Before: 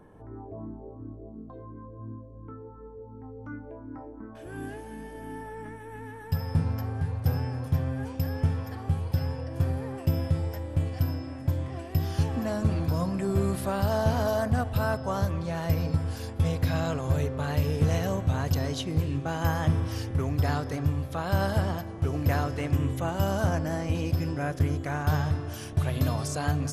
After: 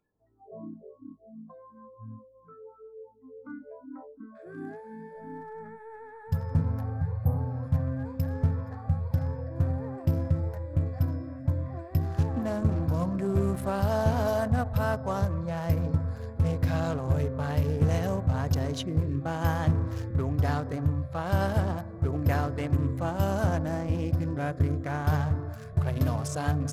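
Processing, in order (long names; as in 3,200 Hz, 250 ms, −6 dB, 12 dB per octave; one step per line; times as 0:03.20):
adaptive Wiener filter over 15 samples
noise reduction from a noise print of the clip's start 28 dB
healed spectral selection 0:07.22–0:07.58, 1,300–8,100 Hz both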